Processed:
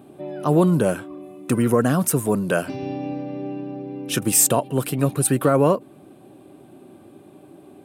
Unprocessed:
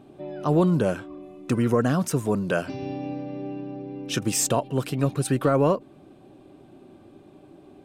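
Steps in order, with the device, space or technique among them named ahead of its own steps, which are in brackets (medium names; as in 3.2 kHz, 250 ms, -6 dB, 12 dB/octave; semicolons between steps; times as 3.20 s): budget condenser microphone (high-pass 99 Hz; resonant high shelf 7.8 kHz +9 dB, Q 1.5); trim +3.5 dB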